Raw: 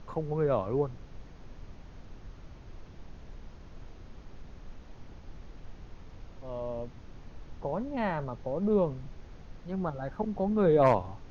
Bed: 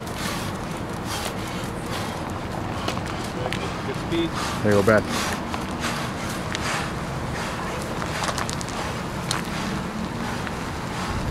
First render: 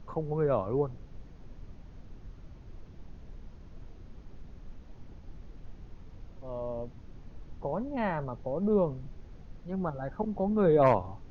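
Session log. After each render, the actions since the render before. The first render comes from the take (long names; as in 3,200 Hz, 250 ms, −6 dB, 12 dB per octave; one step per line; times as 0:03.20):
broadband denoise 6 dB, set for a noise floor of −50 dBFS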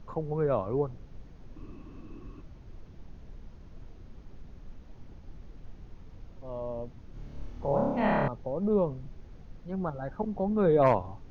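0:01.56–0:02.42: hollow resonant body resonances 310/1,100/2,600 Hz, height 15 dB, ringing for 30 ms
0:07.11–0:08.28: flutter between parallel walls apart 4.9 metres, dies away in 1.2 s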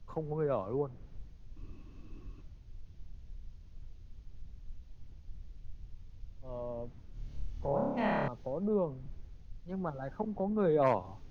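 downward compressor 2 to 1, threshold −35 dBFS, peak gain reduction 9.5 dB
multiband upward and downward expander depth 70%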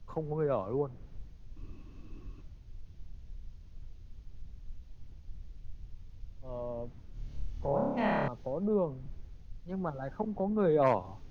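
level +1.5 dB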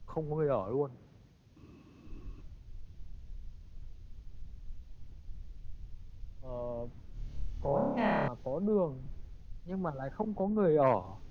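0:00.72–0:02.07: high-pass filter 120 Hz
0:10.43–0:10.94: low-pass filter 2,400 Hz 6 dB per octave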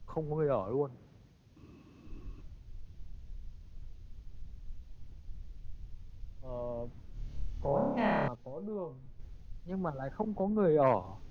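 0:08.35–0:09.20: tuned comb filter 120 Hz, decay 0.22 s, mix 80%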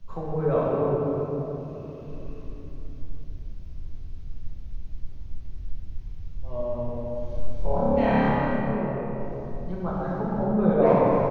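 single-tap delay 259 ms −10.5 dB
rectangular room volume 210 cubic metres, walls hard, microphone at 1.1 metres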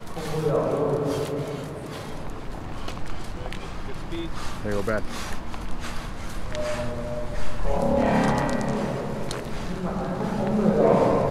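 mix in bed −9 dB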